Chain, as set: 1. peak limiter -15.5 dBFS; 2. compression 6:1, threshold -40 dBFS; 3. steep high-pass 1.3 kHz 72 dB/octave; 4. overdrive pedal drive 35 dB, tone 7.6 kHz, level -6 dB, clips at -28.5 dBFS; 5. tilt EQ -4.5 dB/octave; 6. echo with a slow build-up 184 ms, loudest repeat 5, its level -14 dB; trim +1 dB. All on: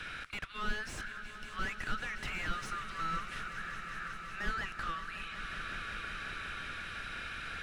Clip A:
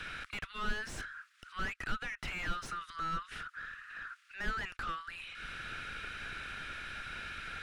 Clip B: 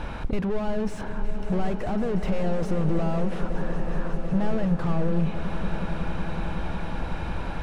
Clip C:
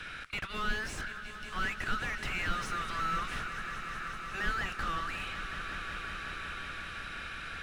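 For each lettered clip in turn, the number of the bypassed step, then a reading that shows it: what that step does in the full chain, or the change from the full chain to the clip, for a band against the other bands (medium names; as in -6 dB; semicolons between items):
6, momentary loudness spread change +2 LU; 3, 2 kHz band -24.0 dB; 2, mean gain reduction 8.5 dB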